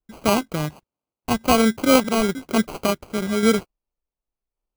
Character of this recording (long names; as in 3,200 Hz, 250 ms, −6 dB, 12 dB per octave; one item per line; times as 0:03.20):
aliases and images of a low sample rate 1,800 Hz, jitter 0%
sample-and-hold tremolo
Ogg Vorbis